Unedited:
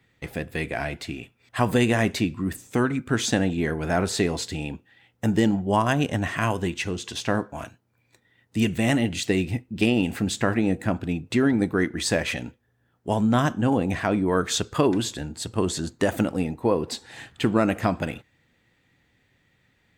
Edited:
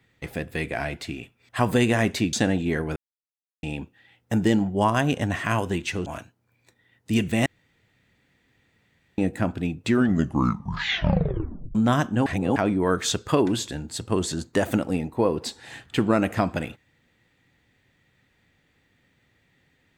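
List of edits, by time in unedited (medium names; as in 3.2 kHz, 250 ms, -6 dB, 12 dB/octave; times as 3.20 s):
2.33–3.25 s: delete
3.88–4.55 s: mute
6.98–7.52 s: delete
8.92–10.64 s: room tone
11.29 s: tape stop 1.92 s
13.72–14.02 s: reverse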